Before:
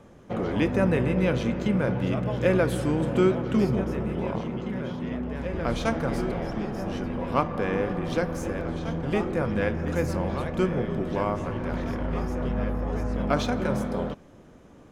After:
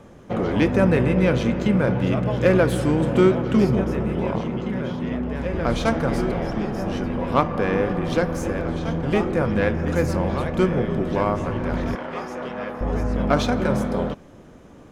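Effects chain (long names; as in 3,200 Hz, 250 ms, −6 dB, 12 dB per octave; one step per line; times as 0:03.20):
phase distortion by the signal itself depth 0.052 ms
0:11.95–0:12.81: meter weighting curve A
level +5 dB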